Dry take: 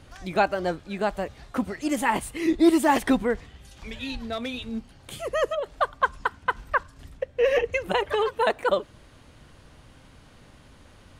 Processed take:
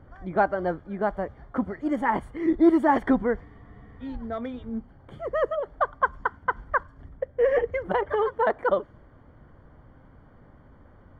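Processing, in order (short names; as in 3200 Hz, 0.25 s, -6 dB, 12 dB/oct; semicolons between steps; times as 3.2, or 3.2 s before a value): polynomial smoothing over 41 samples; spectral freeze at 3.47, 0.54 s; mismatched tape noise reduction decoder only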